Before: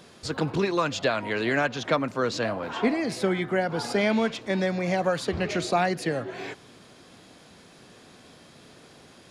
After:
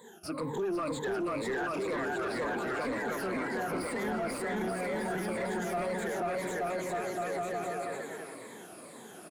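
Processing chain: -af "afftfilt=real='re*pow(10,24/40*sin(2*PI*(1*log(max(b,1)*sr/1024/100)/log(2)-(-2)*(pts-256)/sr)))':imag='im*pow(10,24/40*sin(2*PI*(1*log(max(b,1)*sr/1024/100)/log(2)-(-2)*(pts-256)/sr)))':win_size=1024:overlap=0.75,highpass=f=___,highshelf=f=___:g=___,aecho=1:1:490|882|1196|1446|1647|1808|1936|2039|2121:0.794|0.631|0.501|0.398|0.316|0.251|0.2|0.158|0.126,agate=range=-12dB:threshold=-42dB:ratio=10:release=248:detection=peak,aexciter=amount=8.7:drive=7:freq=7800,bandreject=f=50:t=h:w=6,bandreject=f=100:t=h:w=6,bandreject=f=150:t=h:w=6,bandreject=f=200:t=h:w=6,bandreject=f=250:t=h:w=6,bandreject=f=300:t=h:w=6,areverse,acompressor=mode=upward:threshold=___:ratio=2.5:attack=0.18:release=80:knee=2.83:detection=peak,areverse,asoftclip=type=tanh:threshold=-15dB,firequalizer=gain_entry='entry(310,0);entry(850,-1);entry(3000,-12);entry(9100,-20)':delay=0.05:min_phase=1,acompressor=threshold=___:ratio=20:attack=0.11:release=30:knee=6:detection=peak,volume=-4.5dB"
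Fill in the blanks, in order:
210, 3300, 6.5, -27dB, -24dB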